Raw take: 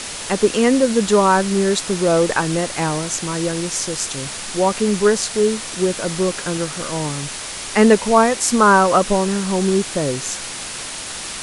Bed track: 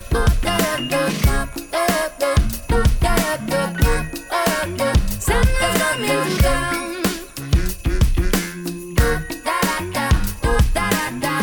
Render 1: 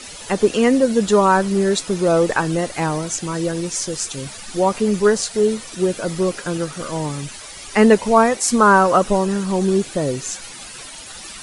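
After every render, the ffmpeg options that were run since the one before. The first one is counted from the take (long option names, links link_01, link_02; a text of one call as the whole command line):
ffmpeg -i in.wav -af "afftdn=noise_reduction=12:noise_floor=-30" out.wav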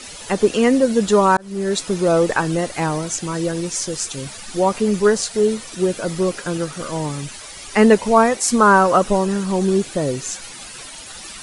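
ffmpeg -i in.wav -filter_complex "[0:a]asplit=2[link_01][link_02];[link_01]atrim=end=1.37,asetpts=PTS-STARTPTS,afade=type=out:start_time=1.366:duration=0.004:curve=hsin[link_03];[link_02]atrim=start=1.37,asetpts=PTS-STARTPTS,afade=type=in:duration=0.45[link_04];[link_03][link_04]concat=n=2:v=0:a=1" out.wav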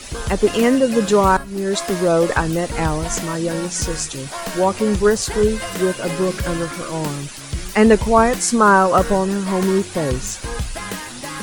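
ffmpeg -i in.wav -i bed.wav -filter_complex "[1:a]volume=-10dB[link_01];[0:a][link_01]amix=inputs=2:normalize=0" out.wav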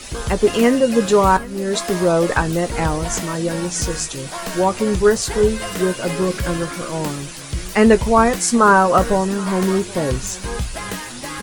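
ffmpeg -i in.wav -filter_complex "[0:a]asplit=2[link_01][link_02];[link_02]adelay=17,volume=-12dB[link_03];[link_01][link_03]amix=inputs=2:normalize=0,aecho=1:1:777:0.0841" out.wav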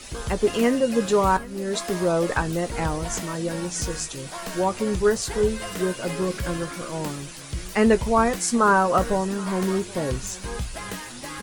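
ffmpeg -i in.wav -af "volume=-6dB" out.wav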